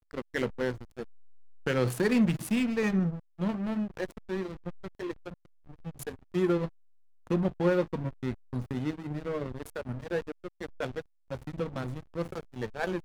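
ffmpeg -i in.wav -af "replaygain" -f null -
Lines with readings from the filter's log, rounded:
track_gain = +11.0 dB
track_peak = 0.122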